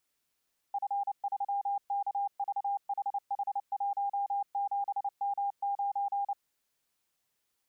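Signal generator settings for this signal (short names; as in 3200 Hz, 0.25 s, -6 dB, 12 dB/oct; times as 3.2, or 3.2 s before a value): Morse "F3KVHH17M9" 29 wpm 803 Hz -28.5 dBFS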